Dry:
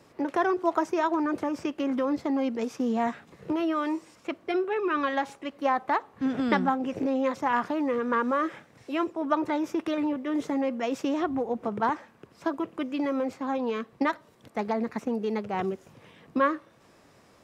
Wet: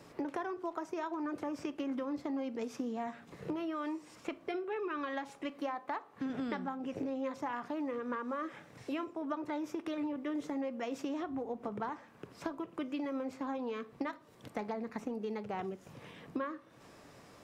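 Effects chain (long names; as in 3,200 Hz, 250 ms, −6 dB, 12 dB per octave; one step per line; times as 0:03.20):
0:05.50–0:06.30: high-pass filter 220 Hz 6 dB per octave
downward compressor 6 to 1, threshold −37 dBFS, peak gain reduction 17.5 dB
rectangular room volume 370 cubic metres, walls furnished, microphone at 0.36 metres
level +1 dB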